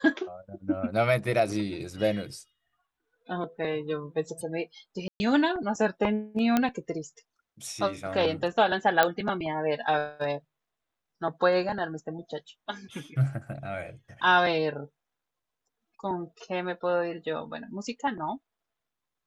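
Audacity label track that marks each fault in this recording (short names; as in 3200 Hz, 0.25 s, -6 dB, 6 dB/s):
5.080000	5.200000	gap 0.12 s
6.570000	6.570000	pop -10 dBFS
9.030000	9.030000	pop -7 dBFS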